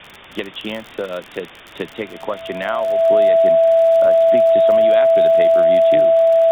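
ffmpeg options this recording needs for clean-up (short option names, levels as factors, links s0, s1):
-af "adeclick=t=4,bandreject=f=660:w=30,afwtdn=0.02"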